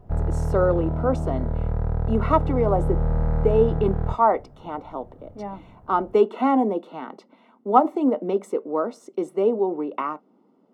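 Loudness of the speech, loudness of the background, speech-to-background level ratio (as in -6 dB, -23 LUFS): -23.5 LUFS, -26.5 LUFS, 3.0 dB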